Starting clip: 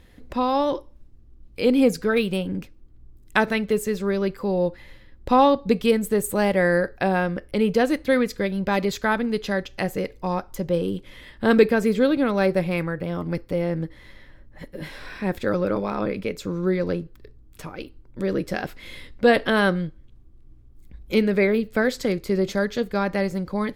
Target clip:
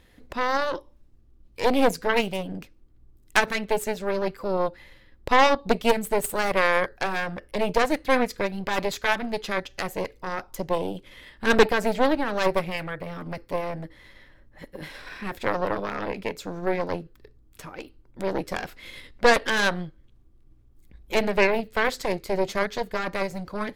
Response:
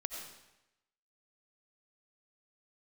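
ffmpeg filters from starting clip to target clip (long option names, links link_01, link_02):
-af "aeval=exprs='0.668*(cos(1*acos(clip(val(0)/0.668,-1,1)))-cos(1*PI/2))+0.188*(cos(6*acos(clip(val(0)/0.668,-1,1)))-cos(6*PI/2))':channel_layout=same,lowshelf=frequency=330:gain=-5.5,volume=-1.5dB"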